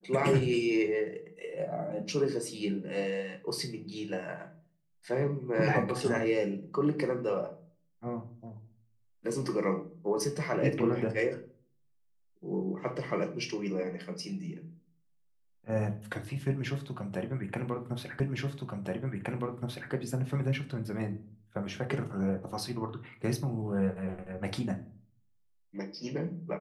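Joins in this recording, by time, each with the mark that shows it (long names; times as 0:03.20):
0:18.20: the same again, the last 1.72 s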